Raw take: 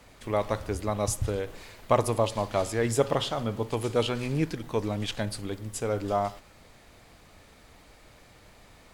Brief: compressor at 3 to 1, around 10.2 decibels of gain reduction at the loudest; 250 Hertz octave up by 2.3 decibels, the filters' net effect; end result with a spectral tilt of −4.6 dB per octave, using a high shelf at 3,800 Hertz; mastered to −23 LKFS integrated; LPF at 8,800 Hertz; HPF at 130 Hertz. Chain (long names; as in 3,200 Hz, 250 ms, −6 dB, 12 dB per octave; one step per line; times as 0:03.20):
high-pass filter 130 Hz
low-pass filter 8,800 Hz
parametric band 250 Hz +3.5 dB
high-shelf EQ 3,800 Hz +3 dB
downward compressor 3 to 1, threshold −31 dBFS
level +12 dB